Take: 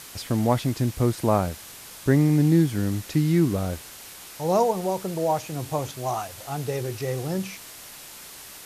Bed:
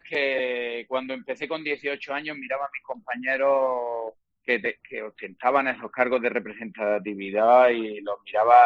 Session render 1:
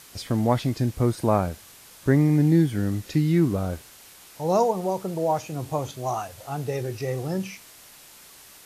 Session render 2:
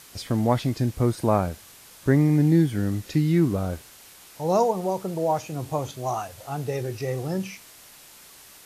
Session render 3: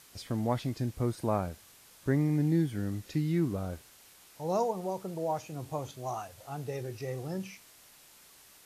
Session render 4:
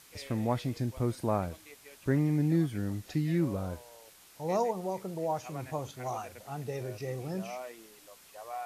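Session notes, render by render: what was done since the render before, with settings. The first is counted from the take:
noise print and reduce 6 dB
nothing audible
gain -8.5 dB
add bed -25.5 dB

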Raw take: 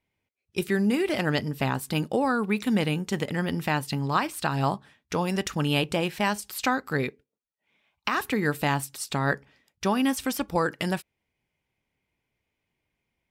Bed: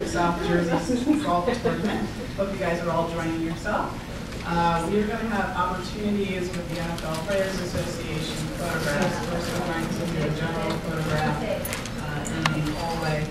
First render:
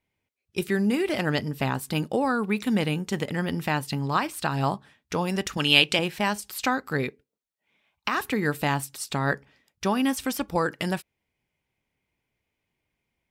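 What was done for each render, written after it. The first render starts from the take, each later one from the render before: 5.57–5.99 weighting filter D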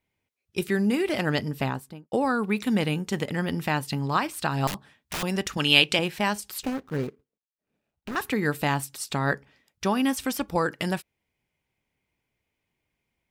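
1.55–2.12 studio fade out; 4.67–5.23 wrapped overs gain 25.5 dB; 6.63–8.16 median filter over 41 samples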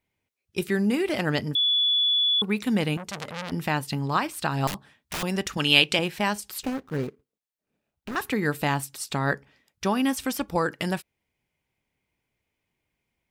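1.55–2.42 bleep 3430 Hz -19 dBFS; 2.97–3.52 core saturation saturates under 3800 Hz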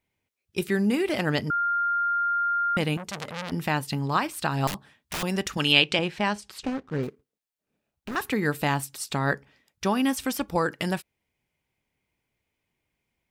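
1.5–2.77 bleep 1400 Hz -22 dBFS; 5.72–7.03 air absorption 70 m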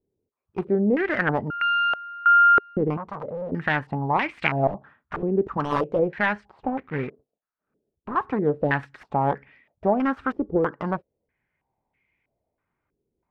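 self-modulated delay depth 0.55 ms; stepped low-pass 3.1 Hz 410–2200 Hz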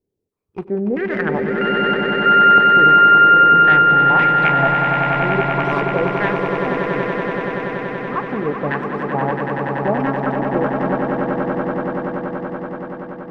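swelling echo 95 ms, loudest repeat 8, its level -7 dB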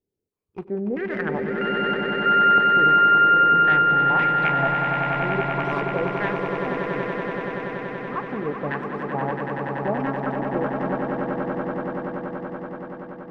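gain -6 dB

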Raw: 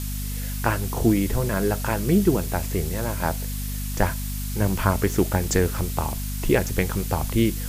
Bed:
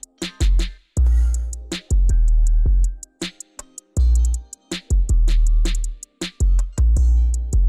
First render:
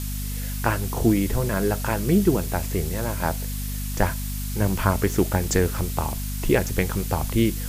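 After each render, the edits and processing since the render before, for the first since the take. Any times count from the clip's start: nothing audible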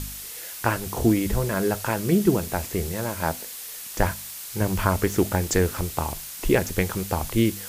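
de-hum 50 Hz, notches 5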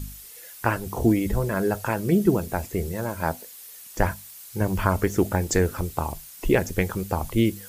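denoiser 10 dB, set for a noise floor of -37 dBFS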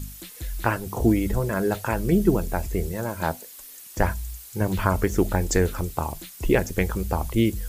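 add bed -16 dB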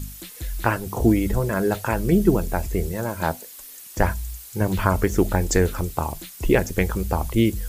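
gain +2 dB

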